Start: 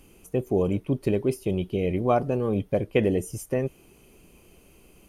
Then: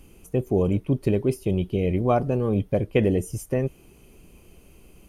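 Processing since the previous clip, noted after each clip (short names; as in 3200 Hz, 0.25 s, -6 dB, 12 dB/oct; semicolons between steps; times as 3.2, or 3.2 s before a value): low shelf 160 Hz +7 dB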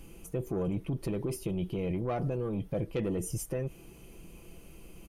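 soft clip -15 dBFS, distortion -17 dB; limiter -26 dBFS, peak gain reduction 10.5 dB; comb 6 ms, depth 36%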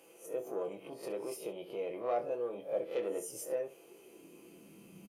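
spectral swells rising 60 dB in 0.32 s; early reflections 25 ms -7.5 dB, 67 ms -14.5 dB; high-pass sweep 530 Hz -> 190 Hz, 3.66–4.92; gain -6.5 dB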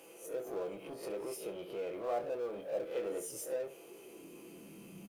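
G.711 law mismatch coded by mu; gain -3.5 dB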